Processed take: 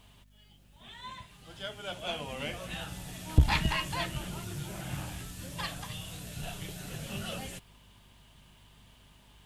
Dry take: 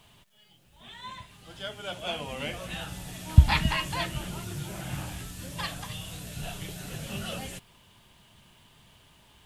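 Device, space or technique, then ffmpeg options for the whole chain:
valve amplifier with mains hum: -af "aeval=exprs='(tanh(4.47*val(0)+0.55)-tanh(0.55))/4.47':channel_layout=same,aeval=exprs='val(0)+0.001*(sin(2*PI*50*n/s)+sin(2*PI*2*50*n/s)/2+sin(2*PI*3*50*n/s)/3+sin(2*PI*4*50*n/s)/4+sin(2*PI*5*50*n/s)/5)':channel_layout=same"

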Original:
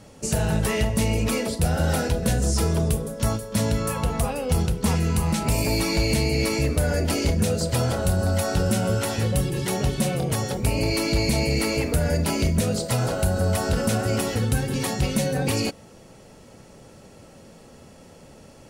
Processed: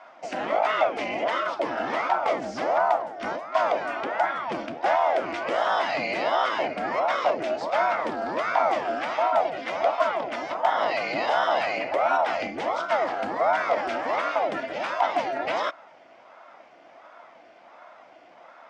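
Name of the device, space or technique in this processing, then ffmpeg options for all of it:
voice changer toy: -af "aeval=exprs='val(0)*sin(2*PI*490*n/s+490*0.75/1.4*sin(2*PI*1.4*n/s))':channel_layout=same,highpass=420,equalizer=frequency=420:width_type=q:width=4:gain=-9,equalizer=frequency=660:width_type=q:width=4:gain=8,equalizer=frequency=1400:width_type=q:width=4:gain=5,equalizer=frequency=2100:width_type=q:width=4:gain=7,equalizer=frequency=4100:width_type=q:width=4:gain=-7,lowpass=frequency=4300:width=0.5412,lowpass=frequency=4300:width=1.3066"

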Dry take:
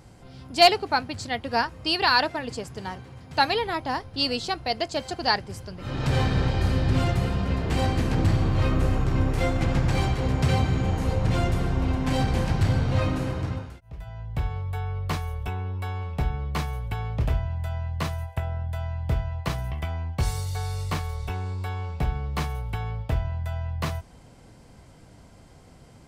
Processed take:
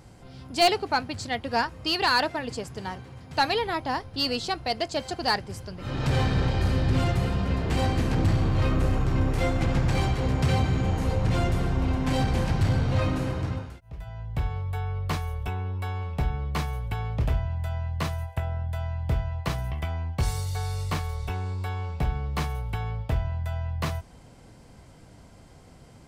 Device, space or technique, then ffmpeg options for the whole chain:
saturation between pre-emphasis and de-emphasis: -af "highshelf=frequency=3600:gain=8,asoftclip=type=tanh:threshold=-12.5dB,highshelf=frequency=3600:gain=-8"

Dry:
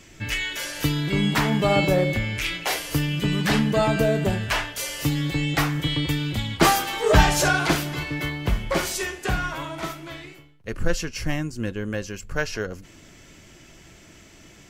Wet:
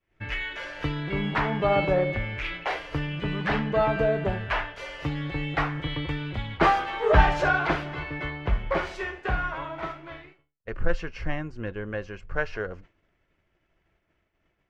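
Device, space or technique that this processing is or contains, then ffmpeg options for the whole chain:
hearing-loss simulation: -af "lowpass=2000,agate=range=-33dB:threshold=-37dB:ratio=3:detection=peak,equalizer=frequency=125:width_type=o:width=1:gain=-5,equalizer=frequency=250:width_type=o:width=1:gain=-8,equalizer=frequency=8000:width_type=o:width=1:gain=-3"

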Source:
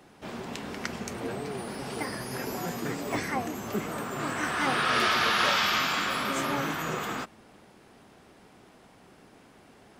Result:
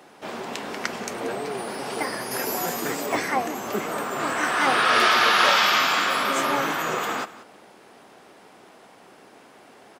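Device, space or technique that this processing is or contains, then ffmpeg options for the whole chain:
filter by subtraction: -filter_complex "[0:a]asettb=1/sr,asplit=3[link_01][link_02][link_03];[link_01]atrim=end=2.314[link_04];[link_02]atrim=start=2.31:end=3.06,asetpts=PTS-STARTPTS,afade=type=in:duration=0.004:curve=qsin,afade=type=out:start_time=0.746:duration=0.004:curve=qsin,highshelf=frequency=6900:gain=9.5[link_05];[link_03]atrim=start=3.056[link_06];[link_04][link_05]acrossfade=duration=0.004:curve1=hsin:curve2=qsin[link_07];[link_07][link_06]acrossfade=duration=0.004:curve1=qsin:curve2=hsin,asplit=2[link_08][link_09];[link_09]lowpass=600,volume=-1[link_10];[link_08][link_10]amix=inputs=2:normalize=0,aecho=1:1:184:0.133,volume=5.5dB"

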